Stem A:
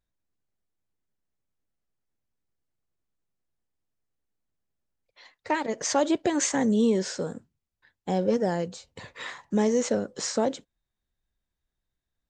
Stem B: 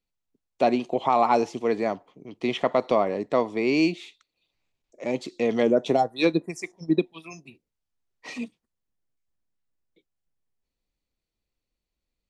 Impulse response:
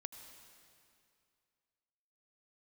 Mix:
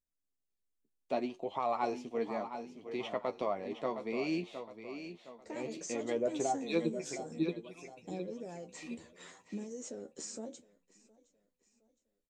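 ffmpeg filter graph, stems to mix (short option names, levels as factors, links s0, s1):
-filter_complex "[0:a]equalizer=f=125:t=o:w=1:g=-11,equalizer=f=250:t=o:w=1:g=4,equalizer=f=1000:t=o:w=1:g=-7,equalizer=f=2000:t=o:w=1:g=-7,equalizer=f=4000:t=o:w=1:g=-6,equalizer=f=8000:t=o:w=1:g=7,alimiter=limit=0.075:level=0:latency=1:release=103,acompressor=threshold=0.0251:ratio=2,volume=0.531,asplit=2[s0][s1];[s1]volume=0.0708[s2];[1:a]adelay=500,volume=0.355,asplit=2[s3][s4];[s4]volume=0.335[s5];[s2][s5]amix=inputs=2:normalize=0,aecho=0:1:714|1428|2142|2856|3570:1|0.39|0.152|0.0593|0.0231[s6];[s0][s3][s6]amix=inputs=3:normalize=0,flanger=delay=9.5:depth=4.4:regen=37:speed=0.63:shape=triangular"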